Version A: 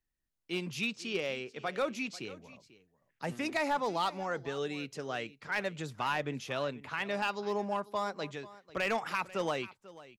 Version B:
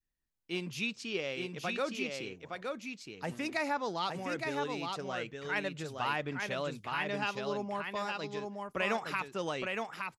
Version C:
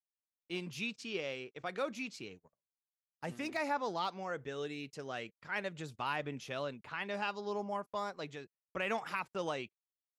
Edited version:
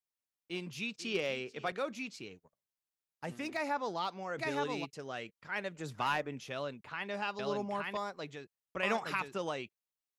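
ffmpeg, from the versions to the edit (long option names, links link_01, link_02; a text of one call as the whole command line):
ffmpeg -i take0.wav -i take1.wav -i take2.wav -filter_complex "[0:a]asplit=2[link_01][link_02];[1:a]asplit=3[link_03][link_04][link_05];[2:a]asplit=6[link_06][link_07][link_08][link_09][link_10][link_11];[link_06]atrim=end=0.992[link_12];[link_01]atrim=start=0.988:end=1.722[link_13];[link_07]atrim=start=1.718:end=4.39[link_14];[link_03]atrim=start=4.37:end=4.86[link_15];[link_08]atrim=start=4.84:end=5.88[link_16];[link_02]atrim=start=5.72:end=6.31[link_17];[link_09]atrim=start=6.15:end=7.392[link_18];[link_04]atrim=start=7.388:end=7.972[link_19];[link_10]atrim=start=7.968:end=8.832[link_20];[link_05]atrim=start=8.828:end=9.382[link_21];[link_11]atrim=start=9.378[link_22];[link_12][link_13]acrossfade=duration=0.004:curve1=hsin:curve2=hsin[link_23];[link_23][link_14]acrossfade=duration=0.004:curve1=hsin:curve2=hsin[link_24];[link_24][link_15]acrossfade=duration=0.02:curve1=tri:curve2=tri[link_25];[link_25][link_16]acrossfade=duration=0.02:curve1=tri:curve2=tri[link_26];[link_26][link_17]acrossfade=duration=0.16:curve1=tri:curve2=tri[link_27];[link_27][link_18]acrossfade=duration=0.16:curve1=tri:curve2=tri[link_28];[link_28][link_19]acrossfade=duration=0.004:curve1=hsin:curve2=hsin[link_29];[link_29][link_20]acrossfade=duration=0.004:curve1=hsin:curve2=hsin[link_30];[link_30][link_21]acrossfade=duration=0.004:curve1=hsin:curve2=hsin[link_31];[link_31][link_22]acrossfade=duration=0.004:curve1=hsin:curve2=hsin" out.wav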